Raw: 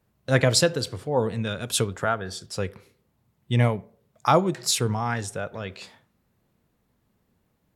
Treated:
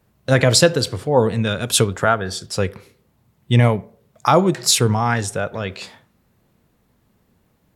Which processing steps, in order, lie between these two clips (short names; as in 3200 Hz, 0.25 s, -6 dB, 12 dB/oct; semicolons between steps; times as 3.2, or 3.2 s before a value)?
maximiser +9 dB; gain -1 dB